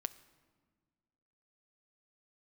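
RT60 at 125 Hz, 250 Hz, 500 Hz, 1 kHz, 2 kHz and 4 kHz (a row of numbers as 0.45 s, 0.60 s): 1.9 s, 2.1 s, 1.7 s, 1.5 s, 1.2 s, 1.0 s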